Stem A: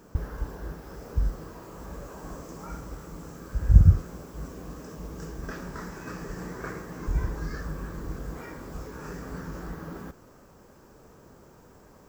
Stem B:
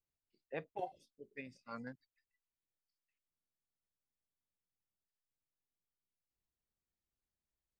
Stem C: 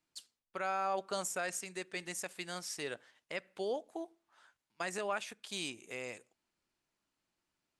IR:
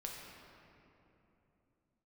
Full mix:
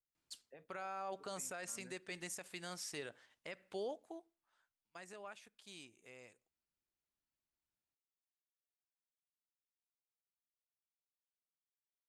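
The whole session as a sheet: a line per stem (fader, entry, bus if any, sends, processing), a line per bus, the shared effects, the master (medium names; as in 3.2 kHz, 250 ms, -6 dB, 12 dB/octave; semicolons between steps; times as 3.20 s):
mute
-11.0 dB, 0.00 s, send -22.5 dB, peak limiter -37 dBFS, peak gain reduction 10 dB
3.88 s -3 dB -> 4.42 s -15 dB, 0.15 s, no send, peaking EQ 66 Hz +7.5 dB 1.5 oct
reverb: on, RT60 3.1 s, pre-delay 6 ms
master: peak limiter -34.5 dBFS, peak gain reduction 7.5 dB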